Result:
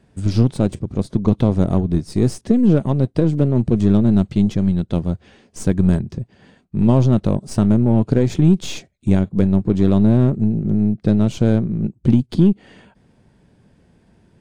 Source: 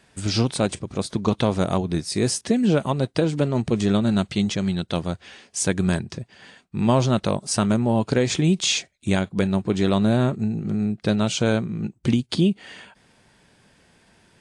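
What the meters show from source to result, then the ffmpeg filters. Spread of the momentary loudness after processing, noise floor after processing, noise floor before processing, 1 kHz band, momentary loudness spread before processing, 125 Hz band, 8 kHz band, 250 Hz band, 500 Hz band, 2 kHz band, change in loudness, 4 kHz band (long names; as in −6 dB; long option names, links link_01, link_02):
8 LU, −58 dBFS, −59 dBFS, −3.5 dB, 8 LU, +7.5 dB, −9.5 dB, +6.0 dB, +1.5 dB, −7.5 dB, +5.0 dB, −9.5 dB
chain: -af "aeval=exprs='0.422*(cos(1*acos(clip(val(0)/0.422,-1,1)))-cos(1*PI/2))+0.0211*(cos(8*acos(clip(val(0)/0.422,-1,1)))-cos(8*PI/2))':channel_layout=same,tiltshelf=frequency=670:gain=9,volume=-1dB"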